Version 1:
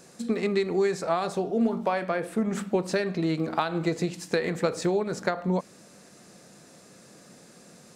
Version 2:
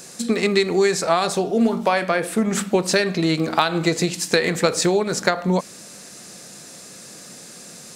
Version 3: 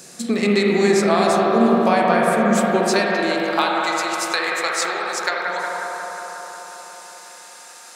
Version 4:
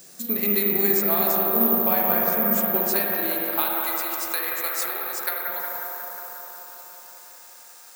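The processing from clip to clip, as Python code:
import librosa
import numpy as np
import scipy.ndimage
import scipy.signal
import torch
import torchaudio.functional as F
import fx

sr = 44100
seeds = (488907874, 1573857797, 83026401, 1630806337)

y1 = fx.high_shelf(x, sr, hz=2200.0, db=10.5)
y1 = F.gain(torch.from_numpy(y1), 6.0).numpy()
y2 = fx.echo_bbd(y1, sr, ms=180, stages=2048, feedback_pct=79, wet_db=-4.5)
y2 = fx.filter_sweep_highpass(y2, sr, from_hz=90.0, to_hz=940.0, start_s=2.11, end_s=3.84, q=0.83)
y2 = fx.rev_spring(y2, sr, rt60_s=2.8, pass_ms=(39, 58), chirp_ms=60, drr_db=-1.0)
y2 = F.gain(torch.from_numpy(y2), -2.0).numpy()
y3 = (np.kron(y2[::3], np.eye(3)[0]) * 3)[:len(y2)]
y3 = F.gain(torch.from_numpy(y3), -9.5).numpy()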